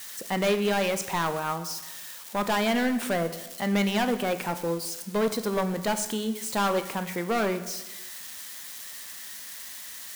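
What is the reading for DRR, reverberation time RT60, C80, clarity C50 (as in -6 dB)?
9.5 dB, 1.1 s, 13.5 dB, 12.0 dB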